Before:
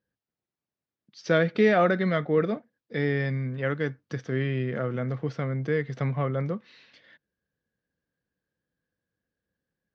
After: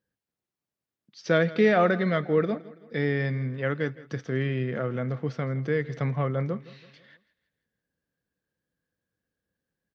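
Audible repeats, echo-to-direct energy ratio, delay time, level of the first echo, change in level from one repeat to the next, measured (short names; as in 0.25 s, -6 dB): 3, -18.0 dB, 0.165 s, -19.0 dB, -7.0 dB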